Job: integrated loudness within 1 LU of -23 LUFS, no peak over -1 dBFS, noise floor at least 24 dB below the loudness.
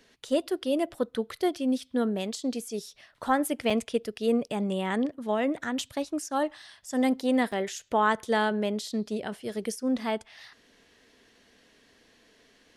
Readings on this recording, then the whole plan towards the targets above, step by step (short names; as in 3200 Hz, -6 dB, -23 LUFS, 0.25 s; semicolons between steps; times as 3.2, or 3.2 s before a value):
dropouts 2; longest dropout 3.9 ms; loudness -29.0 LUFS; peak -12.5 dBFS; loudness target -23.0 LUFS
-> interpolate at 3.7/7.52, 3.9 ms; gain +6 dB